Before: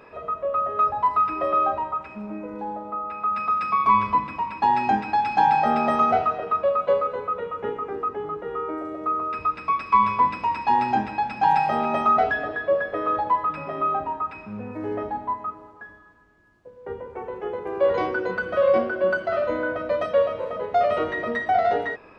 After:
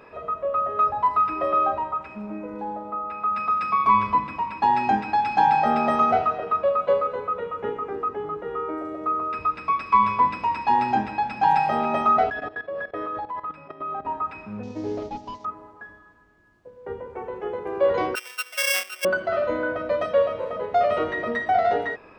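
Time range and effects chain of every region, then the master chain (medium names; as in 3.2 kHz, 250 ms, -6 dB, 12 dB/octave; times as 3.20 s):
12.30–14.05 s: expander -30 dBFS + dynamic bell 600 Hz, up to -4 dB, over -34 dBFS, Q 5.5 + level held to a coarse grid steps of 15 dB
14.63–15.45 s: one-bit delta coder 32 kbps, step -43.5 dBFS + transient shaper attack +4 dB, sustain -5 dB + peaking EQ 1.5 kHz -9.5 dB 1.4 oct
18.15–19.05 s: sorted samples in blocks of 16 samples + high-pass 1.3 kHz + gate -29 dBFS, range -9 dB
whole clip: none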